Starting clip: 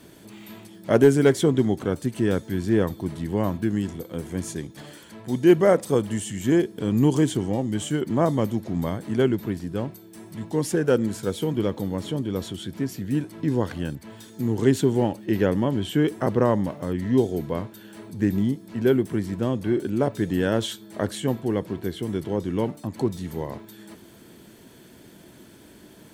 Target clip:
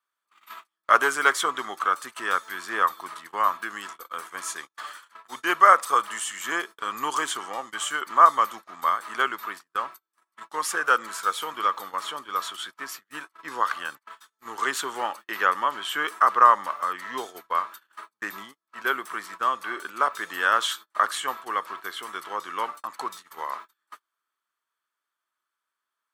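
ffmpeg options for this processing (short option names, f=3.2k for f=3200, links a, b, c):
-af "highpass=f=1.2k:t=q:w=8.9,agate=range=-37dB:threshold=-41dB:ratio=16:detection=peak,volume=3dB"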